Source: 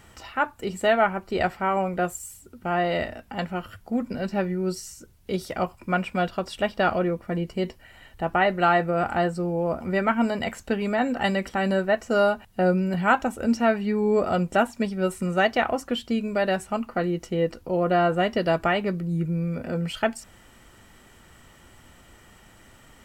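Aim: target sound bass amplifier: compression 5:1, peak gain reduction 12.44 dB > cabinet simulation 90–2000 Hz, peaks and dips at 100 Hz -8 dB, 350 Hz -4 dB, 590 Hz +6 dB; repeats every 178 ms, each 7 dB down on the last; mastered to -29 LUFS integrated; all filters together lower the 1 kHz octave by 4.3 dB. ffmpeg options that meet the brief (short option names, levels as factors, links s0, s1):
-af "equalizer=f=1000:t=o:g=-9,aecho=1:1:178|356|534|712|890:0.447|0.201|0.0905|0.0407|0.0183,acompressor=threshold=0.0282:ratio=5,highpass=f=90:w=0.5412,highpass=f=90:w=1.3066,equalizer=f=100:t=q:w=4:g=-8,equalizer=f=350:t=q:w=4:g=-4,equalizer=f=590:t=q:w=4:g=6,lowpass=f=2000:w=0.5412,lowpass=f=2000:w=1.3066,volume=1.78"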